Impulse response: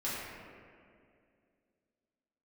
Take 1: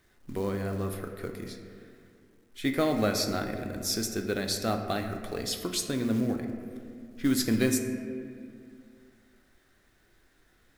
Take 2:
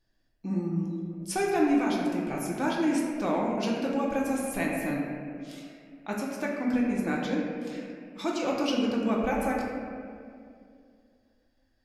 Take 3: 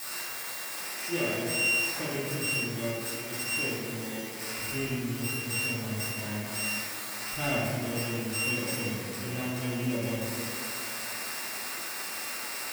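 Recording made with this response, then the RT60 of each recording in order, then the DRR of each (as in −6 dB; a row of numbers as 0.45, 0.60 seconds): 3; 2.3, 2.3, 2.3 seconds; 4.5, −3.5, −10.0 decibels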